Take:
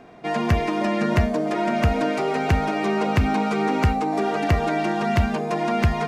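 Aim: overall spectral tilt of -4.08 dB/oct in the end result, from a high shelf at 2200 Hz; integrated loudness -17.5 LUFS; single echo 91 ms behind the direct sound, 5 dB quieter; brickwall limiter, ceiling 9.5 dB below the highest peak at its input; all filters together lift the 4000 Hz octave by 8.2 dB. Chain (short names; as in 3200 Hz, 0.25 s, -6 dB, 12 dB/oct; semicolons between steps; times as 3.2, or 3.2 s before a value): high shelf 2200 Hz +6 dB; bell 4000 Hz +5.5 dB; limiter -14.5 dBFS; echo 91 ms -5 dB; gain +5.5 dB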